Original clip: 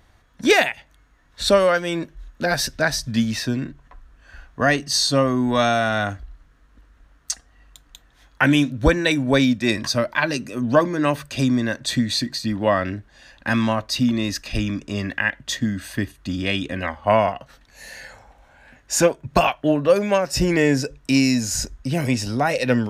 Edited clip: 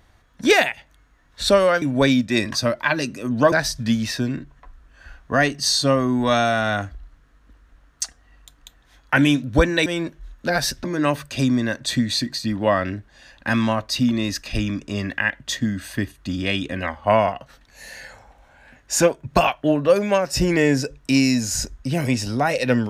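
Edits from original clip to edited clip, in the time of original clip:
1.82–2.8 swap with 9.14–10.84

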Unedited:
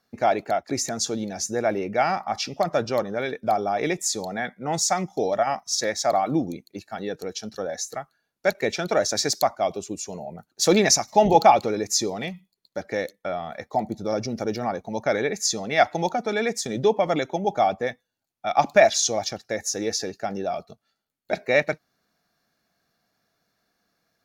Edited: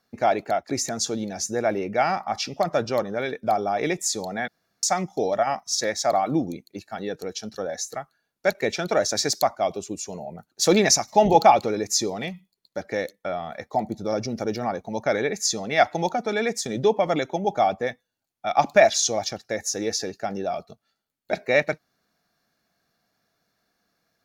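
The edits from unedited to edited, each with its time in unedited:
4.48–4.83 room tone

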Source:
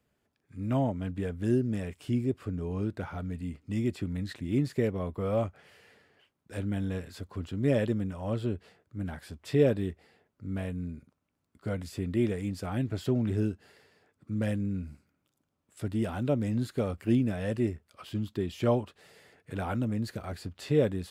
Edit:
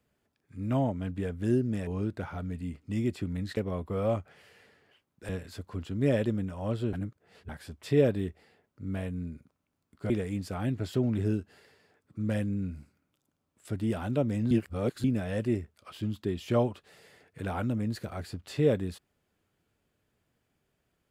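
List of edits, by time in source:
1.87–2.67 cut
4.37–4.85 cut
6.57–6.91 cut
8.55–9.11 reverse
11.72–12.22 cut
16.63–17.16 reverse

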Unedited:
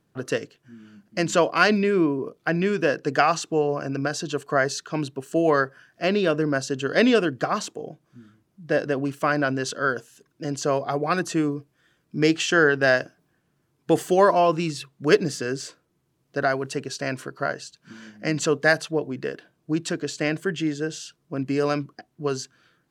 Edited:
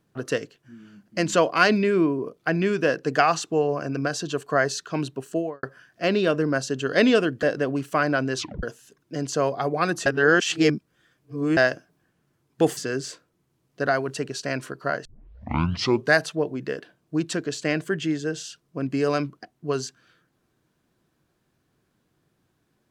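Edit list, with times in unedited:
5.22–5.63 studio fade out
7.43–8.72 cut
9.66 tape stop 0.26 s
11.35–12.86 reverse
14.06–15.33 cut
17.61 tape start 1.09 s

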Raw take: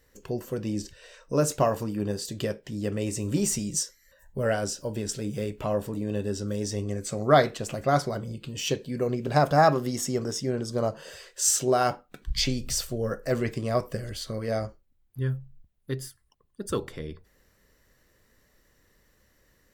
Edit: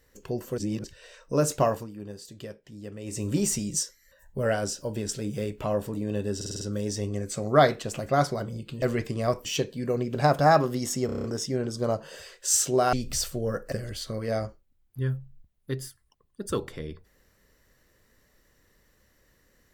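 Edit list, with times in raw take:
0.58–0.84 reverse
1.7–3.21 dip -10.5 dB, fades 0.18 s
6.36 stutter 0.05 s, 6 plays
10.18 stutter 0.03 s, 7 plays
11.87–12.5 cut
13.29–13.92 move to 8.57

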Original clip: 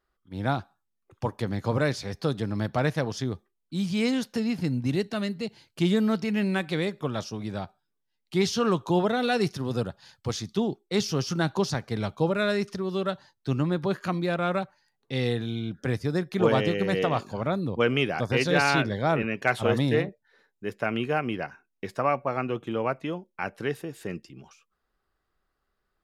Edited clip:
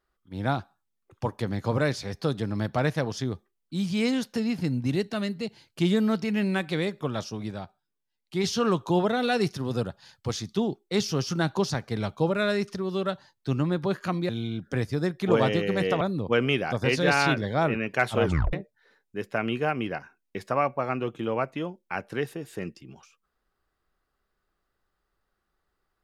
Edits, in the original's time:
7.51–8.44 gain -3.5 dB
14.29–15.41 cut
17.13–17.49 cut
19.71 tape stop 0.30 s

